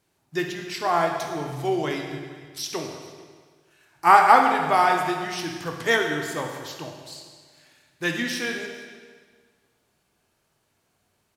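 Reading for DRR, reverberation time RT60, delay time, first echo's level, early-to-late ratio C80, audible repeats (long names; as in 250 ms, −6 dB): 2.0 dB, 1.6 s, 451 ms, −21.5 dB, 5.5 dB, 1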